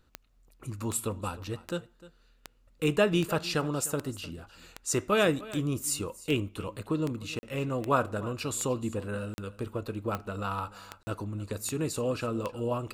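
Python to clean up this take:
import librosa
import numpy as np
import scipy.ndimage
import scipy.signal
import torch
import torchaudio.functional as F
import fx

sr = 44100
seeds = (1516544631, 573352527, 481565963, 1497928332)

y = fx.fix_declick_ar(x, sr, threshold=10.0)
y = fx.fix_interpolate(y, sr, at_s=(7.39, 9.34, 11.03), length_ms=40.0)
y = fx.fix_echo_inverse(y, sr, delay_ms=303, level_db=-18.5)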